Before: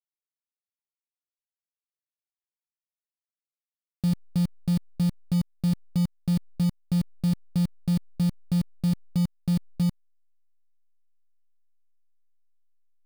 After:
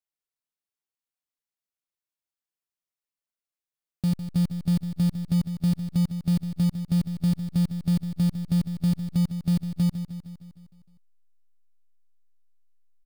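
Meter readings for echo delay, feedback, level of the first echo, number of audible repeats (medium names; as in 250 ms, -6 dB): 154 ms, 59%, -10.5 dB, 6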